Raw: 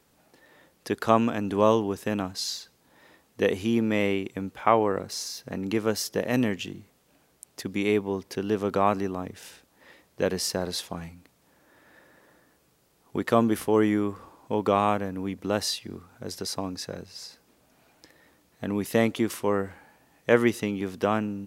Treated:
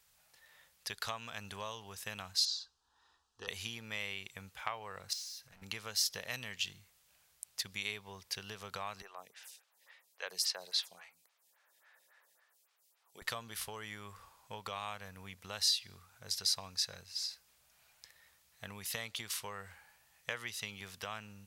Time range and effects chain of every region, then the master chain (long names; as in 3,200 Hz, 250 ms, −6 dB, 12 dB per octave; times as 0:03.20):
0:02.45–0:03.48: hard clipping −13.5 dBFS + high-frequency loss of the air 120 metres + phaser with its sweep stopped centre 580 Hz, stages 6
0:05.13–0:05.62: gain into a clipping stage and back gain 34.5 dB + downward compressor, threshold −45 dBFS
0:09.02–0:13.22: high-pass filter 390 Hz + phaser with staggered stages 3.6 Hz
whole clip: dynamic equaliser 4,200 Hz, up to +7 dB, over −48 dBFS, Q 1.5; downward compressor 6 to 1, threshold −25 dBFS; guitar amp tone stack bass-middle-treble 10-0-10